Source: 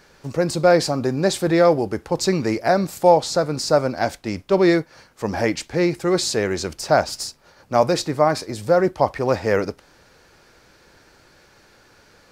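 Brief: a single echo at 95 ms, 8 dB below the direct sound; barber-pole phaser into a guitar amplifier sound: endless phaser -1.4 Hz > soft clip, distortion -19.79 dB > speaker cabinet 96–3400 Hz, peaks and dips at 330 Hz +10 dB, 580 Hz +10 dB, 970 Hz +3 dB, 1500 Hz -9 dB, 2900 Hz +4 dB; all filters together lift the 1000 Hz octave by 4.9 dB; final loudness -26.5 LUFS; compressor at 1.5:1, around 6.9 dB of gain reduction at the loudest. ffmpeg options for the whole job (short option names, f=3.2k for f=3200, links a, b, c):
-filter_complex "[0:a]equalizer=f=1k:t=o:g=3.5,acompressor=threshold=-28dB:ratio=1.5,aecho=1:1:95:0.398,asplit=2[a][b];[b]afreqshift=-1.4[c];[a][c]amix=inputs=2:normalize=1,asoftclip=threshold=-14.5dB,highpass=96,equalizer=f=330:t=q:w=4:g=10,equalizer=f=580:t=q:w=4:g=10,equalizer=f=970:t=q:w=4:g=3,equalizer=f=1.5k:t=q:w=4:g=-9,equalizer=f=2.9k:t=q:w=4:g=4,lowpass=f=3.4k:w=0.5412,lowpass=f=3.4k:w=1.3066,volume=-4dB"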